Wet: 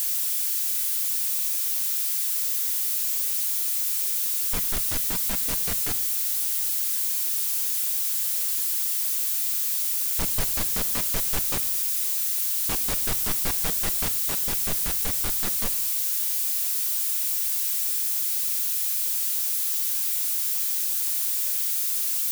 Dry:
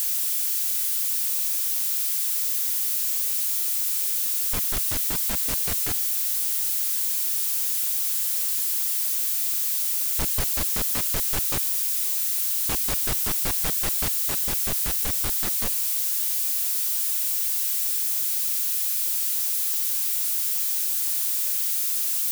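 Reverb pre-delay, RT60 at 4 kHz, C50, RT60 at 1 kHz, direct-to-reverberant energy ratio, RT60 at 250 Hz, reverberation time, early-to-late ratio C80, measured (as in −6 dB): 4 ms, 0.50 s, 17.5 dB, 0.85 s, 10.5 dB, 1.1 s, 0.90 s, 20.5 dB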